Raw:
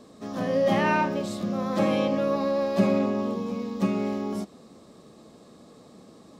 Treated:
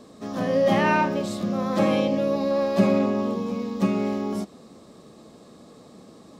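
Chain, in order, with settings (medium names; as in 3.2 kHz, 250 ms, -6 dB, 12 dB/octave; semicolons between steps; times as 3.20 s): 2.00–2.51 s: peaking EQ 1.3 kHz -8.5 dB 0.94 oct; trim +2.5 dB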